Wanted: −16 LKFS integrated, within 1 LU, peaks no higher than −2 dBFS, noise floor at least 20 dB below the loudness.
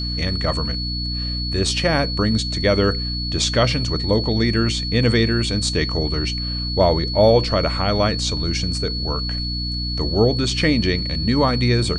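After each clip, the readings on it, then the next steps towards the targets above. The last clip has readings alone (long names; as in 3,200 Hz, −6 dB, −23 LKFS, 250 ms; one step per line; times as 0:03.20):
mains hum 60 Hz; hum harmonics up to 300 Hz; level of the hum −24 dBFS; interfering tone 4,400 Hz; level of the tone −26 dBFS; integrated loudness −19.5 LKFS; sample peak −4.5 dBFS; target loudness −16.0 LKFS
→ mains-hum notches 60/120/180/240/300 Hz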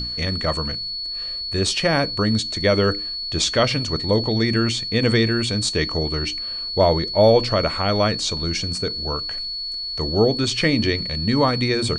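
mains hum none found; interfering tone 4,400 Hz; level of the tone −26 dBFS
→ notch filter 4,400 Hz, Q 30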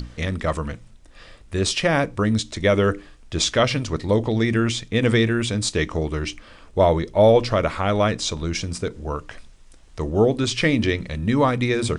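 interfering tone none found; integrated loudness −21.5 LKFS; sample peak −5.0 dBFS; target loudness −16.0 LKFS
→ level +5.5 dB
brickwall limiter −2 dBFS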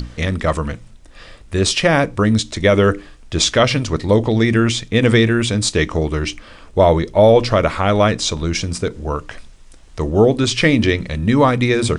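integrated loudness −16.5 LKFS; sample peak −2.0 dBFS; background noise floor −42 dBFS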